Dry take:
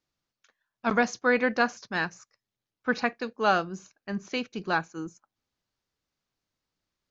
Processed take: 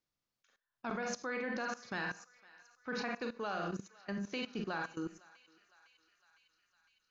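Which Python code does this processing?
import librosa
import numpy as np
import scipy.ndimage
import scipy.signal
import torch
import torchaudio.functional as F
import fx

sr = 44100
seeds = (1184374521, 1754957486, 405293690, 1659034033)

p1 = fx.rev_schroeder(x, sr, rt60_s=0.32, comb_ms=31, drr_db=5.0)
p2 = fx.level_steps(p1, sr, step_db=18)
p3 = p2 + fx.echo_thinned(p2, sr, ms=507, feedback_pct=76, hz=1000.0, wet_db=-20.5, dry=0)
y = p3 * librosa.db_to_amplitude(-1.5)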